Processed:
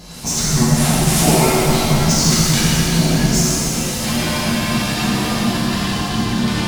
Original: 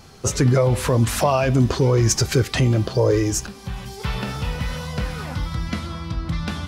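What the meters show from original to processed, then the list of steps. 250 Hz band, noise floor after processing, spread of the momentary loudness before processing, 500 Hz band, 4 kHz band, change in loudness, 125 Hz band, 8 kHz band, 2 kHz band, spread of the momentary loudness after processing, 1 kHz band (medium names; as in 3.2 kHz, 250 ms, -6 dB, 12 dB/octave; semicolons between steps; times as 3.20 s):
+8.0 dB, -22 dBFS, 11 LU, -0.5 dB, +11.0 dB, +5.5 dB, +2.0 dB, +10.0 dB, +8.0 dB, 6 LU, +6.0 dB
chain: frequency shift -280 Hz; treble shelf 2.1 kHz +10.5 dB; in parallel at +2 dB: compression, threshold -24 dBFS, peak gain reduction 16.5 dB; on the sum: saturation -8 dBFS, distortion -15 dB; peaking EQ 720 Hz +5.5 dB 0.71 oct; on a send: reverse echo 960 ms -19 dB; on the sum: pitch-shifted reverb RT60 3.3 s, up +7 st, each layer -8 dB, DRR -9.5 dB; trim -9.5 dB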